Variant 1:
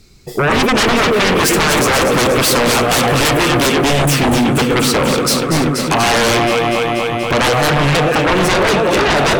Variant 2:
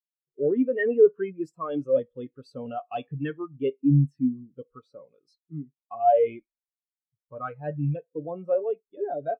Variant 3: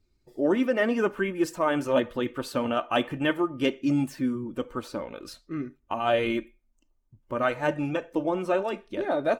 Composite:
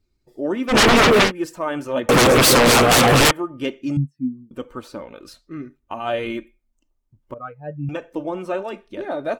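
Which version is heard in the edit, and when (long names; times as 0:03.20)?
3
0:00.72–0:01.27: punch in from 1, crossfade 0.10 s
0:02.09–0:03.31: punch in from 1
0:03.97–0:04.51: punch in from 2
0:07.34–0:07.89: punch in from 2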